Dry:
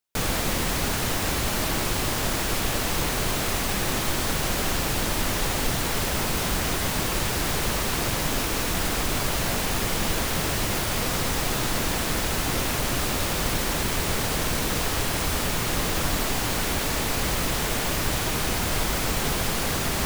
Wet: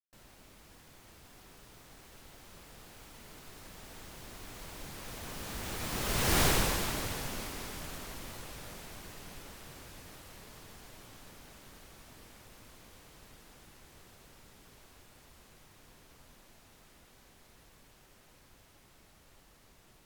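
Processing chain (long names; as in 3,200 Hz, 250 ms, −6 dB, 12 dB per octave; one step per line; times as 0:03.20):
source passing by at 0:06.42, 51 m/s, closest 9.1 metres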